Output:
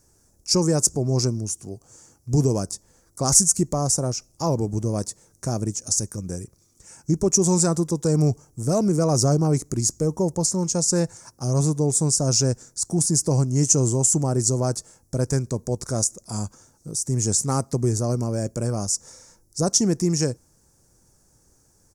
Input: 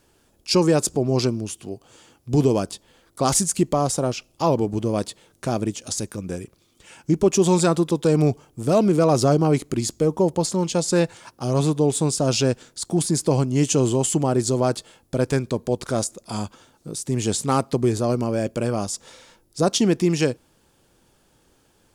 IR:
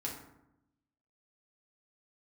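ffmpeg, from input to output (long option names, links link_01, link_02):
-af "firequalizer=gain_entry='entry(110,0);entry(250,-7);entry(1900,-11);entry(3100,-24);entry(5700,5);entry(12000,-2)':delay=0.05:min_phase=1,volume=3dB"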